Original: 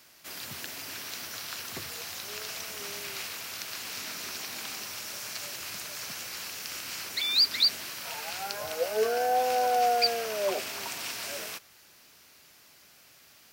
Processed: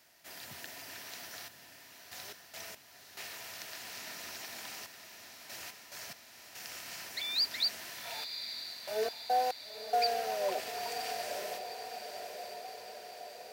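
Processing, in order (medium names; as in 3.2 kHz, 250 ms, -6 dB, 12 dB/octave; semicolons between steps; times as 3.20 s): band-stop 1.1 kHz, Q 6.3; small resonant body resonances 700/1000/1800 Hz, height 8 dB, ringing for 20 ms; trance gate "xxxxxxx...x.x..x" 71 bpm -60 dB; echo that smears into a reverb 968 ms, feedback 64%, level -8 dB; trim -8 dB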